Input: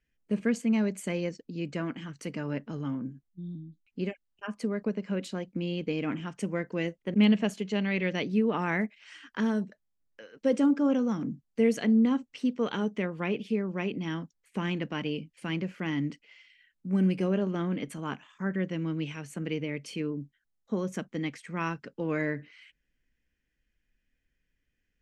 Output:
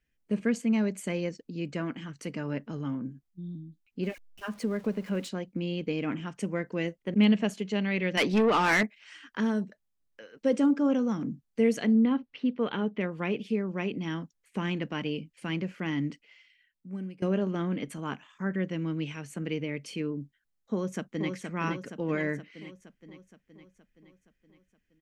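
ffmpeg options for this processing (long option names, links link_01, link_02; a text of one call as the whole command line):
ffmpeg -i in.wav -filter_complex "[0:a]asettb=1/sr,asplit=3[link_01][link_02][link_03];[link_01]atrim=end=4.034[link_04];[link_02]atrim=start=4.03:end=5.29,asetpts=PTS-STARTPTS,afade=type=in:duration=0.004:curve=qsin,afade=type=out:start_time=1.256:duration=0.004:curve=qsin,aeval=exprs='val(0)+0.5*0.00473*sgn(val(0))':channel_layout=same[link_05];[link_03]atrim=start=5.286[link_06];[link_04][link_05]acrossfade=duration=0.004:curve1=hsin:curve2=qsin[link_07];[link_07][link_06]acrossfade=duration=0.004:curve1=qsin:curve2=hsin,asettb=1/sr,asplit=3[link_08][link_09][link_10];[link_08]atrim=end=8.174[link_11];[link_09]atrim=start=8.17:end=8.83,asetpts=PTS-STARTPTS,afade=type=in:duration=0.004:curve=qsin,afade=type=out:start_time=0.656:duration=0.004:curve=qsin,asplit=2[link_12][link_13];[link_13]highpass=frequency=720:poles=1,volume=21dB,asoftclip=type=tanh:threshold=-15.5dB[link_14];[link_12][link_14]amix=inputs=2:normalize=0,lowpass=frequency=7600:poles=1,volume=-6dB[link_15];[link_10]atrim=start=8.826[link_16];[link_11][link_15]acrossfade=duration=0.004:curve1=hsin:curve2=qsin[link_17];[link_17][link_16]acrossfade=duration=0.004:curve1=qsin:curve2=hsin,asettb=1/sr,asplit=3[link_18][link_19][link_20];[link_18]atrim=end=11.954[link_21];[link_19]atrim=start=11.95:end=13.01,asetpts=PTS-STARTPTS,afade=type=in:duration=0.004:curve=qsin,afade=type=out:start_time=1.056:duration=0.004:curve=qsin,lowpass=frequency=3800:width=0.5412,lowpass=frequency=3800:width=1.3066[link_22];[link_20]atrim=start=13.006[link_23];[link_21][link_22]acrossfade=duration=0.004:curve1=hsin:curve2=qsin[link_24];[link_24][link_23]acrossfade=duration=0.004:curve1=qsin:curve2=hsin,asplit=2[link_25][link_26];[link_26]afade=type=in:start_time=20.73:duration=0.01,afade=type=out:start_time=21.31:duration=0.01,aecho=0:1:470|940|1410|1880|2350|2820|3290|3760:0.562341|0.337405|0.202443|0.121466|0.0728794|0.0437277|0.0262366|0.015742[link_27];[link_25][link_27]amix=inputs=2:normalize=0,asplit=2[link_28][link_29];[link_28]atrim=end=17.22,asetpts=PTS-STARTPTS,afade=type=out:start_time=16.09:duration=1.13:silence=0.0841395[link_30];[link_29]atrim=start=17.22,asetpts=PTS-STARTPTS,afade=type=in:duration=0.004:curve=hsin:silence=0.0841395[link_31];[link_30][link_31]concat=n=2:v=0:a=1" out.wav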